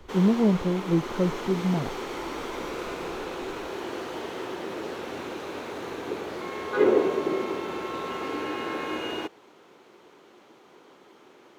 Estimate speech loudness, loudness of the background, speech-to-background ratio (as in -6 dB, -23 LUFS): -25.5 LUFS, -31.0 LUFS, 5.5 dB